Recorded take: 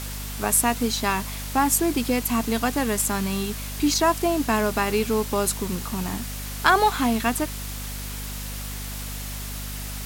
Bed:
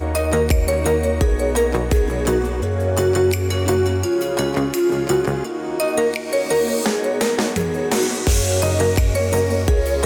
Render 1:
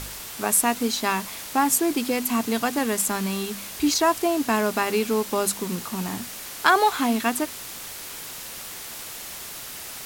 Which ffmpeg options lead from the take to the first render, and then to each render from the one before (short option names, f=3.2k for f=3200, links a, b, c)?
-af "bandreject=f=50:t=h:w=4,bandreject=f=100:t=h:w=4,bandreject=f=150:t=h:w=4,bandreject=f=200:t=h:w=4,bandreject=f=250:t=h:w=4"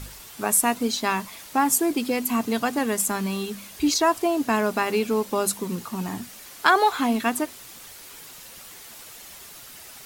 -af "afftdn=nr=8:nf=-37"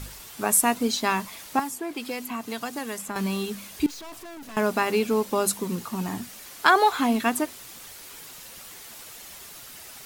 -filter_complex "[0:a]asettb=1/sr,asplit=3[a][b][c];[a]atrim=end=1.594[d];[b]atrim=start=1.59:end=3.16,asetpts=PTS-STARTPTS,afade=t=in:d=0.004:c=qsin,afade=t=out:st=1.566:d=0.004:c=qsin,acrossover=split=640|3500[e][f][g];[e]acompressor=threshold=-35dB:ratio=4[h];[f]acompressor=threshold=-34dB:ratio=4[i];[g]acompressor=threshold=-39dB:ratio=4[j];[h][i][j]amix=inputs=3:normalize=0[k];[c]atrim=start=3.156[l];[d][k]acrossfade=d=0.004:c1=hsin:c2=qsin[m];[m][l]acrossfade=d=0.004:c1=qsin:c2=hsin,asettb=1/sr,asplit=3[n][o][p];[n]atrim=end=3.864[q];[o]atrim=start=3.86:end=4.57,asetpts=PTS-STARTPTS,afade=t=in:d=0.004:c=qsin,afade=t=out:st=0.706:d=0.004:c=qsin,aeval=exprs='(tanh(100*val(0)+0.45)-tanh(0.45))/100':c=same[r];[p]atrim=start=4.566[s];[q][r]acrossfade=d=0.004:c1=hsin:c2=qsin[t];[t][s]acrossfade=d=0.004:c1=qsin:c2=hsin"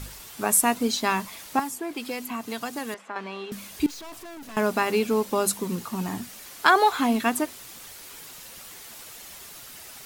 -filter_complex "[0:a]asettb=1/sr,asplit=3[a][b][c];[a]atrim=end=2.944[d];[b]atrim=start=2.94:end=3.52,asetpts=PTS-STARTPTS,afade=t=in:d=0.004:c=qsin,afade=t=out:st=0.576:d=0.004:c=qsin,highpass=450,lowpass=2.6k[e];[c]atrim=start=3.516[f];[d][e]acrossfade=d=0.004:c1=hsin:c2=qsin[g];[g][f]acrossfade=d=0.004:c1=qsin:c2=hsin"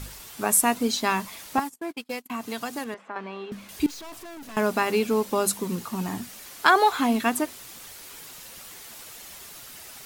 -filter_complex "[0:a]asettb=1/sr,asplit=3[a][b][c];[a]atrim=end=1.584[d];[b]atrim=start=1.58:end=2.3,asetpts=PTS-STARTPTS,afade=t=in:d=0.004:c=qsin,afade=t=out:st=0.716:d=0.004:c=qsin,agate=range=-34dB:threshold=-33dB:ratio=16:release=100:detection=peak[e];[c]atrim=start=2.296[f];[d][e]acrossfade=d=0.004:c1=hsin:c2=qsin[g];[g][f]acrossfade=d=0.004:c1=qsin:c2=hsin,asettb=1/sr,asplit=3[h][i][j];[h]atrim=end=2.844[k];[i]atrim=start=2.84:end=3.69,asetpts=PTS-STARTPTS,afade=t=in:d=0.004:c=qsin,afade=t=out:st=0.846:d=0.004:c=qsin,lowpass=f=2.2k:p=1[l];[j]atrim=start=3.686[m];[k][l]acrossfade=d=0.004:c1=hsin:c2=qsin[n];[n][m]acrossfade=d=0.004:c1=qsin:c2=hsin"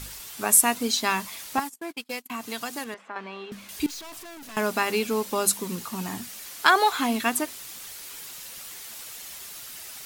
-af "tiltshelf=f=1.4k:g=-3.5"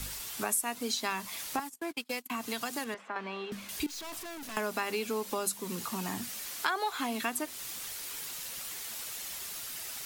-filter_complex "[0:a]acrossover=split=240|700|1900[a][b][c][d];[a]alimiter=level_in=12.5dB:limit=-24dB:level=0:latency=1,volume=-12.5dB[e];[e][b][c][d]amix=inputs=4:normalize=0,acompressor=threshold=-32dB:ratio=3"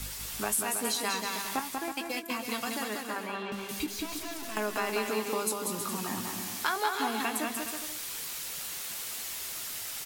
-filter_complex "[0:a]asplit=2[a][b];[b]adelay=19,volume=-11dB[c];[a][c]amix=inputs=2:normalize=0,asplit=2[d][e];[e]aecho=0:1:190|323|416.1|481.3|526.9:0.631|0.398|0.251|0.158|0.1[f];[d][f]amix=inputs=2:normalize=0"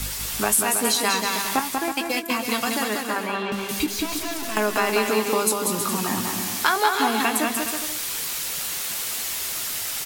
-af "volume=9.5dB"